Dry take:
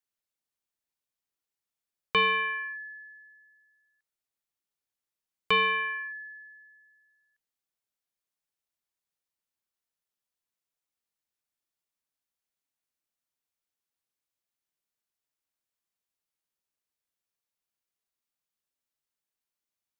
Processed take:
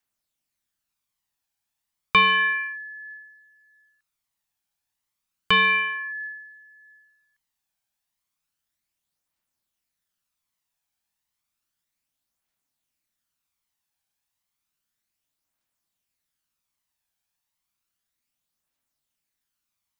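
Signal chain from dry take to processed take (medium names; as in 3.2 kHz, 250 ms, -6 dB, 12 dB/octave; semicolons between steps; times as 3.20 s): peaking EQ 440 Hz -7.5 dB 0.6 oct; phaser 0.32 Hz, delay 1.3 ms, feedback 37%; trim +6.5 dB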